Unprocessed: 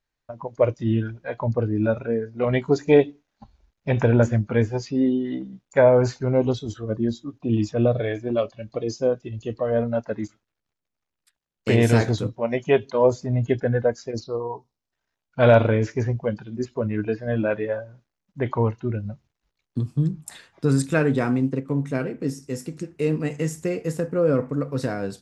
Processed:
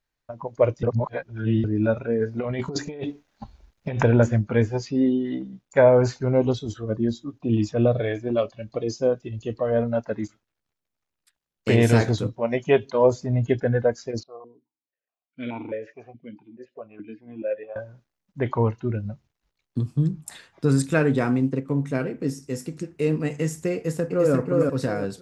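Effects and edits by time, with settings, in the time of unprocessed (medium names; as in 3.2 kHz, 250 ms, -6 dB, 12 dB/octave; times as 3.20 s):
0.83–1.64 s: reverse
2.18–4.03 s: compressor with a negative ratio -28 dBFS
14.23–17.76 s: stepped vowel filter 4.7 Hz
23.75–24.34 s: echo throw 350 ms, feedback 30%, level -2 dB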